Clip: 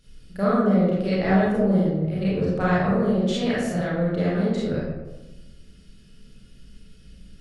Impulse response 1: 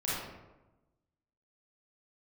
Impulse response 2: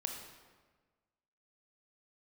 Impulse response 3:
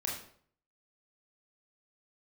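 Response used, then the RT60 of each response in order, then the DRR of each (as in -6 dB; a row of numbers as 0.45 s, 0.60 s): 1; 1.1 s, 1.4 s, 0.55 s; -9.0 dB, 2.5 dB, -3.0 dB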